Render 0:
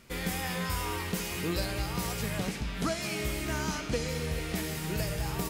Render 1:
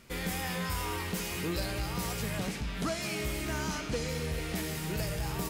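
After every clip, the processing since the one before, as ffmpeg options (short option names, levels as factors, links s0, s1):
-af "asoftclip=type=tanh:threshold=0.0562"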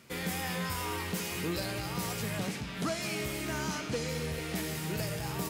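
-af "highpass=f=81:w=0.5412,highpass=f=81:w=1.3066"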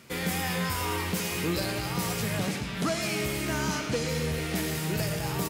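-af "aecho=1:1:115:0.266,volume=1.68"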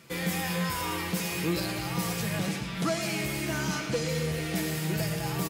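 -af "aecho=1:1:6:0.46,volume=0.794"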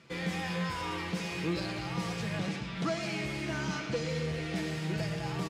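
-af "lowpass=5100,volume=0.668"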